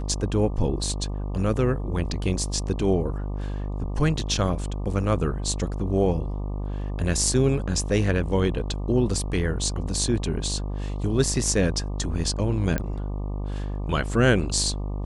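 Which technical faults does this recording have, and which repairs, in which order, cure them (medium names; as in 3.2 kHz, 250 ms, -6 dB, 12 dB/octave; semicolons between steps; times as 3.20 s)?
buzz 50 Hz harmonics 24 -29 dBFS
12.78 s: pop -13 dBFS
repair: de-click; de-hum 50 Hz, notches 24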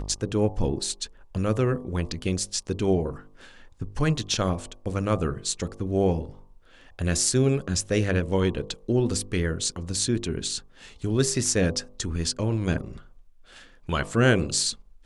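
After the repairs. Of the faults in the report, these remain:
nothing left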